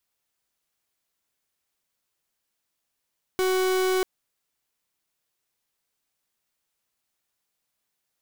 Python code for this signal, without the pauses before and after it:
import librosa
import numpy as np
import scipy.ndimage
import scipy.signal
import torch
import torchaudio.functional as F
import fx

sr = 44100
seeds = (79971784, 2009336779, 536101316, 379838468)

y = fx.pulse(sr, length_s=0.64, hz=373.0, level_db=-23.0, duty_pct=42)